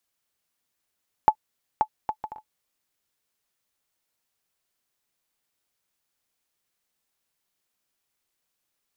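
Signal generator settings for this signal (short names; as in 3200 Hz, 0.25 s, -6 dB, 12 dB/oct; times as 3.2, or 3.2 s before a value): bouncing ball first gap 0.53 s, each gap 0.53, 862 Hz, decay 72 ms -5 dBFS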